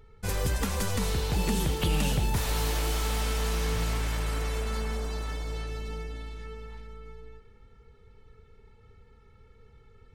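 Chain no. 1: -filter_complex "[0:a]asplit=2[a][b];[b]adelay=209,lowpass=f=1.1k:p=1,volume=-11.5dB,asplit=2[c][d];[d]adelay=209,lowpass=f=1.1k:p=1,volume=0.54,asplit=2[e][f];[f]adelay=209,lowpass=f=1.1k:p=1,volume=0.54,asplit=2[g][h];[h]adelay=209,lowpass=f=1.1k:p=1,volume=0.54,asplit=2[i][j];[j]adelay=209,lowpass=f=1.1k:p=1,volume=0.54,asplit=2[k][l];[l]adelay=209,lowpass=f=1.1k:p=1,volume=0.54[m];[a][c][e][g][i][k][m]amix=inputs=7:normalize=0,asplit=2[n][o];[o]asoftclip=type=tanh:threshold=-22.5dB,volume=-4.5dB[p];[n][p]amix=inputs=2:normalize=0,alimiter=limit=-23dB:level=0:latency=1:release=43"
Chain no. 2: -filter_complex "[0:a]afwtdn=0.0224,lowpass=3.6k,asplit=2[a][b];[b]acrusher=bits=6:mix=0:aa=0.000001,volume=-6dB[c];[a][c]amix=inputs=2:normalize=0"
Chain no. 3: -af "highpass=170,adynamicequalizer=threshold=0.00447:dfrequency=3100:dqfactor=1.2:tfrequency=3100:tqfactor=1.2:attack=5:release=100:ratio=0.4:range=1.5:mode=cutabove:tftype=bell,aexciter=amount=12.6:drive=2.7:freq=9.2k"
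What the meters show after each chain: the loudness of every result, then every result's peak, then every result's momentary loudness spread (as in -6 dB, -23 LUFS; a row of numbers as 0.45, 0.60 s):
-32.5, -28.5, -22.5 LUFS; -23.0, -12.5, -8.0 dBFS; 11, 14, 18 LU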